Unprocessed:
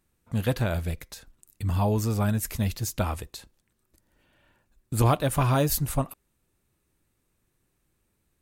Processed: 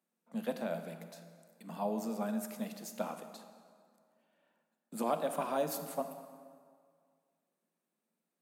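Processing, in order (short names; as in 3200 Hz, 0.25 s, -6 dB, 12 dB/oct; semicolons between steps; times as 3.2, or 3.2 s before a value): rippled Chebyshev high-pass 160 Hz, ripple 9 dB; reverb RT60 2.0 s, pre-delay 23 ms, DRR 8 dB; gain -5 dB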